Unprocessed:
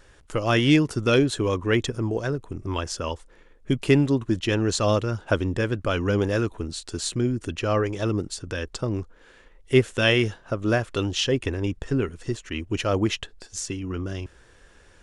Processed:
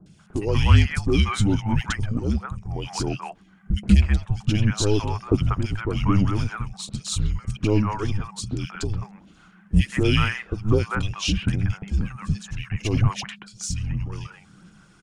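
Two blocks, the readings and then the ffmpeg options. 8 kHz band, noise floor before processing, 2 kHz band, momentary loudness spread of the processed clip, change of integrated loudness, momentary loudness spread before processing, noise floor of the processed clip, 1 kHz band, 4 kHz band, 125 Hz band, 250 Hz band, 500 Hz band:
+0.5 dB, -54 dBFS, -2.5 dB, 13 LU, +0.5 dB, 12 LU, -53 dBFS, +0.5 dB, -1.5 dB, +5.0 dB, -0.5 dB, -5.5 dB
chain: -filter_complex "[0:a]afreqshift=-210,aphaser=in_gain=1:out_gain=1:delay=2.6:decay=0.4:speed=1.3:type=sinusoidal,acrossover=split=700|2200[a][b][c];[c]adelay=60[d];[b]adelay=190[e];[a][e][d]amix=inputs=3:normalize=0"

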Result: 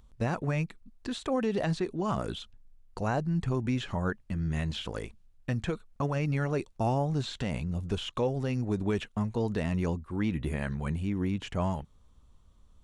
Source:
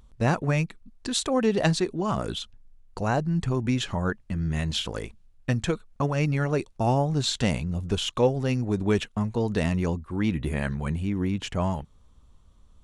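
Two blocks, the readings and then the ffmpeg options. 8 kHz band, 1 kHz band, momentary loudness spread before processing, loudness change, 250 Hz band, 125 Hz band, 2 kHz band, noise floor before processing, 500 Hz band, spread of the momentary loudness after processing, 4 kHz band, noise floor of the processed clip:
-13.5 dB, -5.0 dB, 8 LU, -5.0 dB, -4.5 dB, -4.5 dB, -6.0 dB, -56 dBFS, -5.5 dB, 8 LU, -9.0 dB, -60 dBFS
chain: -filter_complex "[0:a]alimiter=limit=-15.5dB:level=0:latency=1:release=67,acrossover=split=3000[a][b];[b]acompressor=threshold=-42dB:ratio=4:attack=1:release=60[c];[a][c]amix=inputs=2:normalize=0,volume=-3.5dB"

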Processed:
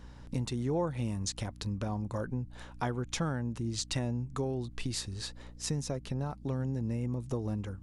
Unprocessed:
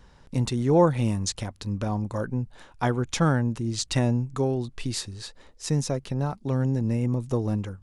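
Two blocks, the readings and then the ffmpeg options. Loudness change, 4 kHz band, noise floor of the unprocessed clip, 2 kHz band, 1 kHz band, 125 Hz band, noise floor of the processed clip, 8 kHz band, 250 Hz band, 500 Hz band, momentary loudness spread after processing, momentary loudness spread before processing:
-9.0 dB, -5.0 dB, -54 dBFS, -8.0 dB, -10.0 dB, -8.5 dB, -49 dBFS, -5.5 dB, -9.0 dB, -10.0 dB, 5 LU, 10 LU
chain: -af "acompressor=threshold=-34dB:ratio=2.5,aeval=exprs='val(0)+0.00355*(sin(2*PI*60*n/s)+sin(2*PI*2*60*n/s)/2+sin(2*PI*3*60*n/s)/3+sin(2*PI*4*60*n/s)/4+sin(2*PI*5*60*n/s)/5)':c=same"

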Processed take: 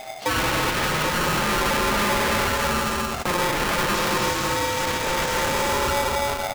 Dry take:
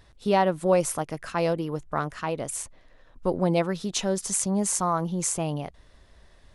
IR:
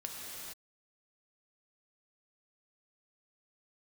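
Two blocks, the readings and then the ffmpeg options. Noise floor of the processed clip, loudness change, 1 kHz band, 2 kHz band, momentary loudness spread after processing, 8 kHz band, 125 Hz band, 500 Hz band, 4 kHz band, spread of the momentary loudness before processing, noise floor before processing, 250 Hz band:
-29 dBFS, +4.5 dB, +7.5 dB, +15.5 dB, 3 LU, +1.0 dB, +1.5 dB, +1.0 dB, +13.0 dB, 9 LU, -56 dBFS, 0.0 dB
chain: -filter_complex "[0:a]lowshelf=f=68:g=11.5,aecho=1:1:241|315|403|537:0.376|0.355|0.112|0.211[a];[1:a]atrim=start_sample=2205[b];[a][b]afir=irnorm=-1:irlink=0,asplit=2[c][d];[d]aeval=exprs='0.335*sin(PI/2*7.08*val(0)/0.335)':c=same,volume=-3dB[e];[c][e]amix=inputs=2:normalize=0,lowpass=f=2.6k:p=1,alimiter=limit=-18dB:level=0:latency=1:release=19,highpass=43,aresample=16000,acrusher=bits=7:mix=0:aa=0.000001,aresample=44100,aeval=exprs='val(0)*sgn(sin(2*PI*710*n/s))':c=same"

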